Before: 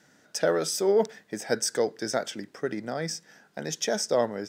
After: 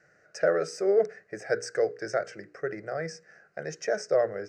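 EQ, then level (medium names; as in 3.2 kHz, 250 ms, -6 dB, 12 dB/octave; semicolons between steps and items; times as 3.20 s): distance through air 140 m; hum notches 60/120/180/240/300/360/420/480 Hz; static phaser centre 930 Hz, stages 6; +2.0 dB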